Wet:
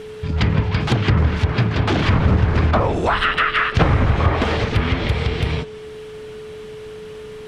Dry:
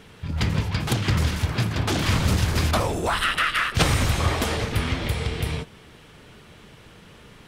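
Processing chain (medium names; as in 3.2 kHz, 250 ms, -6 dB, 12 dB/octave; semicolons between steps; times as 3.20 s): whistle 430 Hz -38 dBFS; low-pass that closes with the level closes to 1.6 kHz, closed at -17 dBFS; trim +6 dB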